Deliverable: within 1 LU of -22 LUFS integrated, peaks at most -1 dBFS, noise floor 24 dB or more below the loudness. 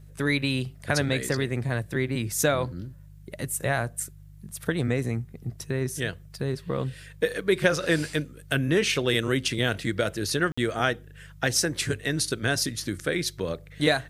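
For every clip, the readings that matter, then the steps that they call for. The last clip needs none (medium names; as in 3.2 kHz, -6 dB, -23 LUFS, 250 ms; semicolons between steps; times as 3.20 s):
dropouts 1; longest dropout 55 ms; hum 50 Hz; highest harmonic 150 Hz; hum level -44 dBFS; loudness -27.0 LUFS; peak level -7.0 dBFS; loudness target -22.0 LUFS
-> interpolate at 10.52 s, 55 ms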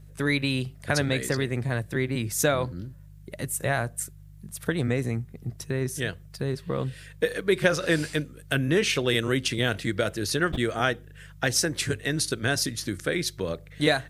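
dropouts 0; hum 50 Hz; highest harmonic 150 Hz; hum level -44 dBFS
-> de-hum 50 Hz, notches 3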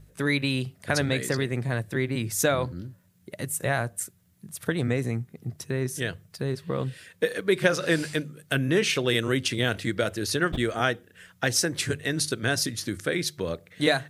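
hum not found; loudness -27.0 LUFS; peak level -6.5 dBFS; loudness target -22.0 LUFS
-> trim +5 dB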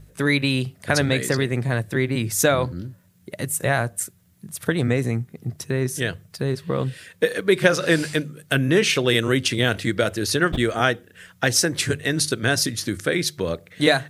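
loudness -22.0 LUFS; peak level -1.5 dBFS; noise floor -56 dBFS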